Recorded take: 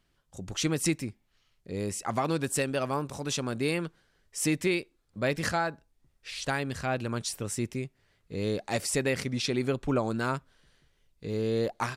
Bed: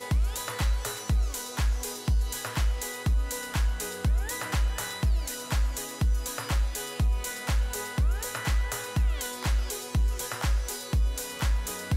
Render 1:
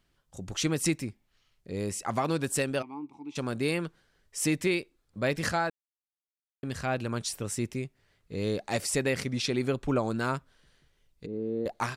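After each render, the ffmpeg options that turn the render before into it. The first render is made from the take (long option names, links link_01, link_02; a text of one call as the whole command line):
ffmpeg -i in.wav -filter_complex "[0:a]asplit=3[link_01][link_02][link_03];[link_01]afade=type=out:start_time=2.81:duration=0.02[link_04];[link_02]asplit=3[link_05][link_06][link_07];[link_05]bandpass=frequency=300:width_type=q:width=8,volume=0dB[link_08];[link_06]bandpass=frequency=870:width_type=q:width=8,volume=-6dB[link_09];[link_07]bandpass=frequency=2240:width_type=q:width=8,volume=-9dB[link_10];[link_08][link_09][link_10]amix=inputs=3:normalize=0,afade=type=in:start_time=2.81:duration=0.02,afade=type=out:start_time=3.35:duration=0.02[link_11];[link_03]afade=type=in:start_time=3.35:duration=0.02[link_12];[link_04][link_11][link_12]amix=inputs=3:normalize=0,asettb=1/sr,asplit=3[link_13][link_14][link_15];[link_13]atrim=end=11.264[link_16];[link_14]atrim=start=11.26:end=11.66,asetpts=PTS-STARTPTS,afade=type=in:duration=0.004:curve=qsin,afade=type=out:start_time=0.396:duration=0.004:curve=qsin,bandpass=frequency=290:width_type=q:width=1.5[link_17];[link_15]atrim=start=11.656[link_18];[link_16][link_17]acrossfade=duration=0.004:curve1=hsin:curve2=qsin[link_19];[link_19][link_18]acrossfade=duration=0.004:curve1=qsin:curve2=hsin,asplit=3[link_20][link_21][link_22];[link_20]atrim=end=5.7,asetpts=PTS-STARTPTS,afade=type=out:start_time=5.696:duration=0.004:curve=hsin[link_23];[link_21]atrim=start=5.7:end=6.63,asetpts=PTS-STARTPTS,volume=0[link_24];[link_22]atrim=start=6.63,asetpts=PTS-STARTPTS,afade=type=in:duration=0.004:curve=hsin[link_25];[link_23][link_24][link_25]concat=n=3:v=0:a=1" out.wav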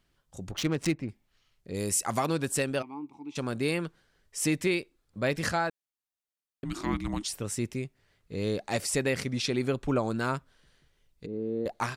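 ffmpeg -i in.wav -filter_complex "[0:a]asettb=1/sr,asplit=3[link_01][link_02][link_03];[link_01]atrim=end=0.514[link_04];[link_02]atrim=start=0.51:end=1.09,asetpts=PTS-STARTPTS,afade=type=in:duration=0.004:curve=qsin,afade=type=out:start_time=0.576:duration=0.004:curve=qsin,adynamicsmooth=sensitivity=5:basefreq=1400[link_05];[link_03]atrim=start=1.086[link_06];[link_04][link_05]acrossfade=duration=0.004:curve1=hsin:curve2=qsin[link_07];[link_07][link_06]acrossfade=duration=0.004:curve1=qsin:curve2=hsin,asettb=1/sr,asplit=3[link_08][link_09][link_10];[link_08]atrim=end=1.744[link_11];[link_09]atrim=start=1.74:end=2.26,asetpts=PTS-STARTPTS,afade=type=in:duration=0.004:curve=qsin,afade=type=out:start_time=0.516:duration=0.004:curve=qsin,equalizer=frequency=13000:width=0.34:gain=13[link_12];[link_10]atrim=start=2.256[link_13];[link_11][link_12]acrossfade=duration=0.004:curve1=hsin:curve2=qsin[link_14];[link_14][link_13]acrossfade=duration=0.004:curve1=qsin:curve2=hsin,asplit=3[link_15][link_16][link_17];[link_15]afade=type=out:start_time=6.64:duration=0.02[link_18];[link_16]afreqshift=-430,afade=type=in:start_time=6.64:duration=0.02,afade=type=out:start_time=7.27:duration=0.02[link_19];[link_17]afade=type=in:start_time=7.27:duration=0.02[link_20];[link_18][link_19][link_20]amix=inputs=3:normalize=0" out.wav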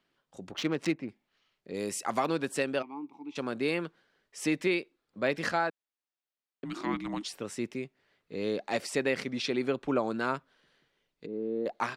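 ffmpeg -i in.wav -filter_complex "[0:a]acrossover=split=180 4800:gain=0.0891 1 0.251[link_01][link_02][link_03];[link_01][link_02][link_03]amix=inputs=3:normalize=0" out.wav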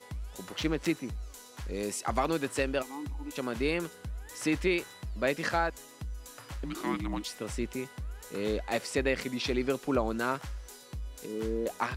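ffmpeg -i in.wav -i bed.wav -filter_complex "[1:a]volume=-14dB[link_01];[0:a][link_01]amix=inputs=2:normalize=0" out.wav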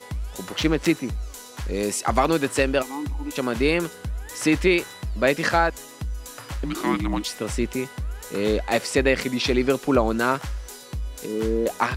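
ffmpeg -i in.wav -af "volume=9dB" out.wav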